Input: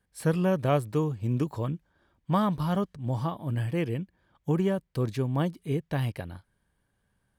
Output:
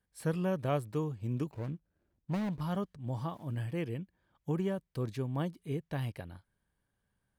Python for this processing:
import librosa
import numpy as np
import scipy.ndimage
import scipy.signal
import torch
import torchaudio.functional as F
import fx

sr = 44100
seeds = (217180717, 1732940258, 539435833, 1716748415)

y = fx.median_filter(x, sr, points=41, at=(1.51, 2.61))
y = fx.sample_gate(y, sr, floor_db=-53.0, at=(3.2, 3.66))
y = F.gain(torch.from_numpy(y), -7.0).numpy()